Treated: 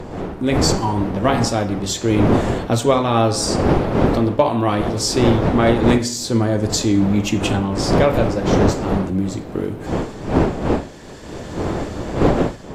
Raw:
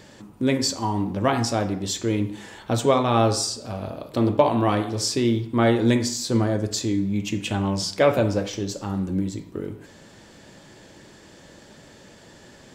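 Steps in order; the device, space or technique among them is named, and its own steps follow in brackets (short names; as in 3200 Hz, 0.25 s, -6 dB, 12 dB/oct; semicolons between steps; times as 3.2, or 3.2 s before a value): smartphone video outdoors (wind noise 460 Hz -25 dBFS; AGC gain up to 11 dB; gain -1 dB; AAC 64 kbps 32000 Hz)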